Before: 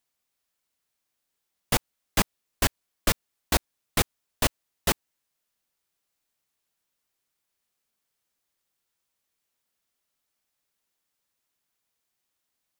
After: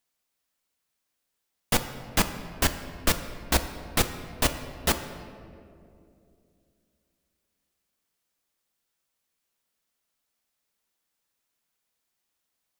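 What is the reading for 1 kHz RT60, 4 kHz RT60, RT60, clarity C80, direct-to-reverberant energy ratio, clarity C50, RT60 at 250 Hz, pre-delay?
2.1 s, 1.2 s, 2.6 s, 11.0 dB, 8.0 dB, 10.0 dB, 3.3 s, 4 ms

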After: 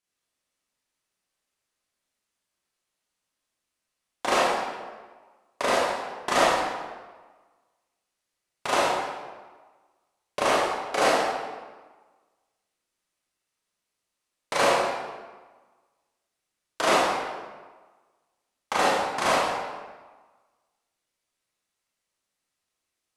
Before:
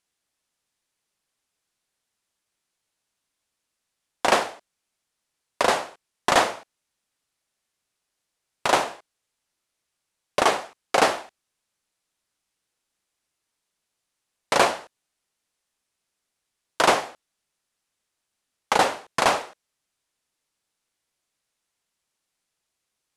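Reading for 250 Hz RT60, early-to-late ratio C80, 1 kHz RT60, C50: 1.4 s, 1.5 dB, 1.4 s, -2.0 dB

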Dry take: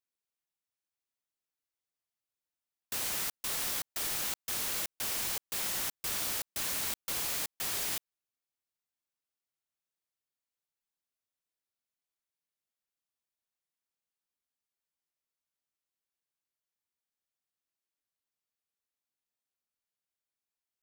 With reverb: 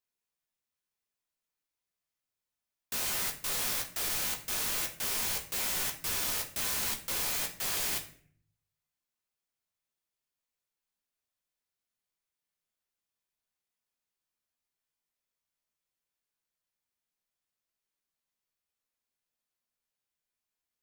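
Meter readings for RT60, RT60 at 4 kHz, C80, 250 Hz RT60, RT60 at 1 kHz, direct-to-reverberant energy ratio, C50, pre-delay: 0.50 s, 0.40 s, 14.5 dB, 0.80 s, 0.45 s, 1.0 dB, 10.5 dB, 12 ms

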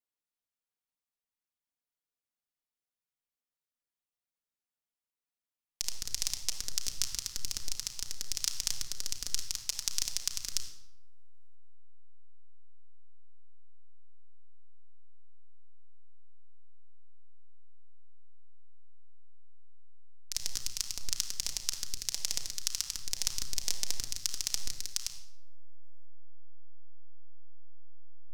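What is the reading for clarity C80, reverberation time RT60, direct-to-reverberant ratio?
10.0 dB, 0.95 s, 2.0 dB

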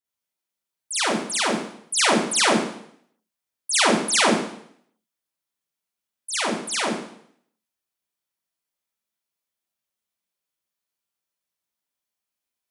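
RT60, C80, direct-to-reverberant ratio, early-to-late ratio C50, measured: 0.70 s, 5.0 dB, -7.0 dB, 0.5 dB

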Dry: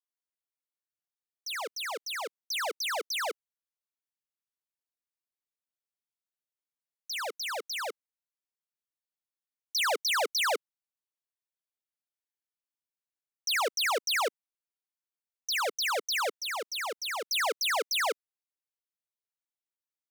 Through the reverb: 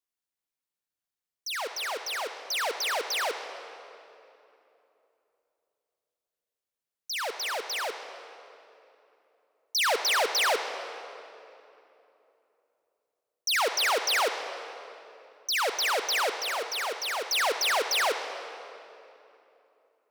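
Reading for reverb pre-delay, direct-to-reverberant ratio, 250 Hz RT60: 37 ms, 7.0 dB, 3.6 s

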